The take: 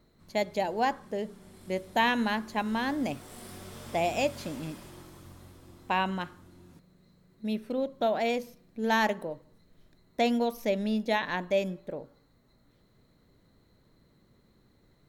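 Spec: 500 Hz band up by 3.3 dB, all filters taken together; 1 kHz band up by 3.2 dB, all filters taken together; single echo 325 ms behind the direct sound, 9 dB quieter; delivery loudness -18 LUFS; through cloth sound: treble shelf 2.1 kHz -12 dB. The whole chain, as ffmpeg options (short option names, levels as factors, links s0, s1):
-af "equalizer=f=500:t=o:g=3.5,equalizer=f=1000:t=o:g=5,highshelf=f=2100:g=-12,aecho=1:1:325:0.355,volume=3.35"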